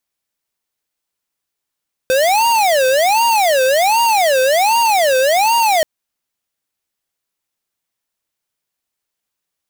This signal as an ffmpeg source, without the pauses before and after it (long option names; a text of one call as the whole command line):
ffmpeg -f lavfi -i "aevalsrc='0.224*(2*lt(mod((726*t-211/(2*PI*1.3)*sin(2*PI*1.3*t)),1),0.5)-1)':duration=3.73:sample_rate=44100" out.wav